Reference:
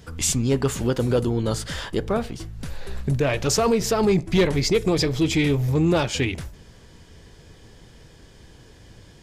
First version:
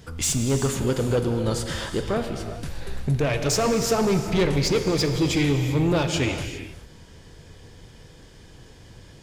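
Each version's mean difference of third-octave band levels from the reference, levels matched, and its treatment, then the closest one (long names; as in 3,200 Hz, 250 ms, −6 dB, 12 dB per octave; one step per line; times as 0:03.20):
4.0 dB: soft clipping −16 dBFS, distortion −16 dB
reverb whose tail is shaped and stops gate 430 ms flat, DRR 6 dB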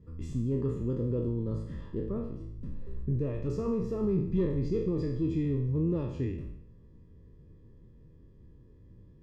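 10.0 dB: peak hold with a decay on every bin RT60 0.71 s
moving average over 59 samples
level −7.5 dB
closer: first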